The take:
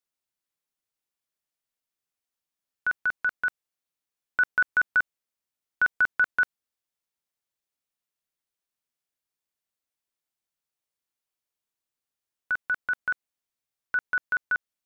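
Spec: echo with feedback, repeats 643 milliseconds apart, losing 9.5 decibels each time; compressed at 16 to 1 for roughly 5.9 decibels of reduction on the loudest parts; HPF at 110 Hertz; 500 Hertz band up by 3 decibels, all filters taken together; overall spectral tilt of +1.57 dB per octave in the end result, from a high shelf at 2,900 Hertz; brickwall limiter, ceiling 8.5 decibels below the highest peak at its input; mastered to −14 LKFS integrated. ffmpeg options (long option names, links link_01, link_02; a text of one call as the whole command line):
ffmpeg -i in.wav -af "highpass=110,equalizer=frequency=500:width_type=o:gain=3.5,highshelf=frequency=2900:gain=6.5,acompressor=threshold=-22dB:ratio=16,alimiter=limit=-22dB:level=0:latency=1,aecho=1:1:643|1286|1929|2572:0.335|0.111|0.0365|0.012,volume=19dB" out.wav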